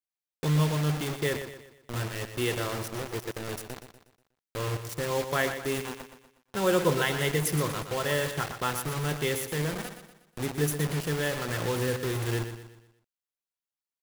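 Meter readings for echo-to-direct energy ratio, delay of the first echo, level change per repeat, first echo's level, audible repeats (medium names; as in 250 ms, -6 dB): -8.5 dB, 121 ms, -7.5 dB, -9.5 dB, 4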